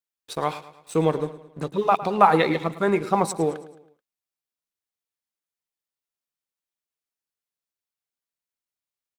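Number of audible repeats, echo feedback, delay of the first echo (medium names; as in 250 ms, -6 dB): 3, 46%, 108 ms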